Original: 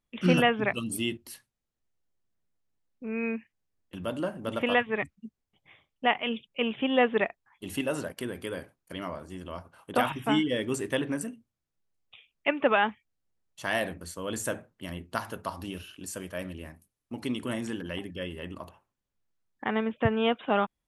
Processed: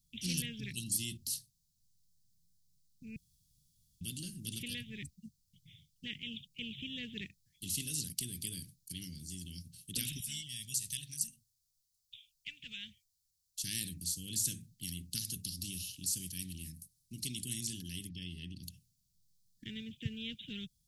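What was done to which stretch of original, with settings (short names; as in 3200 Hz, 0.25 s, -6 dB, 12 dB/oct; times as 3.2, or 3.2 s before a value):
3.16–4.01 room tone
10.2–13.64 passive tone stack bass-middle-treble 10-0-10
18.09–18.63 polynomial smoothing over 15 samples
whole clip: elliptic band-stop 160–4500 Hz, stop band 70 dB; low shelf 84 Hz -9.5 dB; spectral compressor 2:1; gain +5.5 dB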